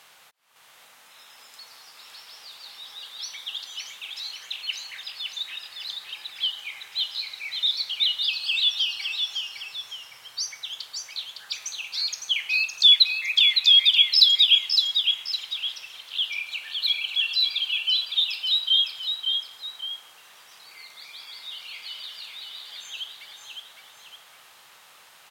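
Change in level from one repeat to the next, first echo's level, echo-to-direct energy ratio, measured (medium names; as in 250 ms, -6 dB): -7.5 dB, -5.0 dB, -4.5 dB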